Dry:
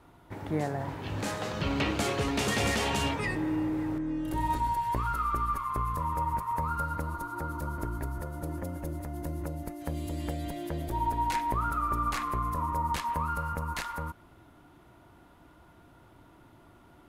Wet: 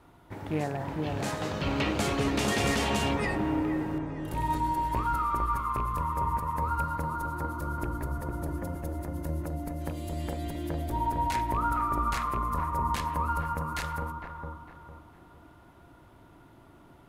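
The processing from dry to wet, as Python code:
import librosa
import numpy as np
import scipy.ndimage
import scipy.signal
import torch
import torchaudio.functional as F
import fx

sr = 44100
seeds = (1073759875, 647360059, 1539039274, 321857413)

p1 = fx.rattle_buzz(x, sr, strikes_db=-30.0, level_db=-34.0)
y = p1 + fx.echo_wet_lowpass(p1, sr, ms=454, feedback_pct=34, hz=1200.0, wet_db=-3, dry=0)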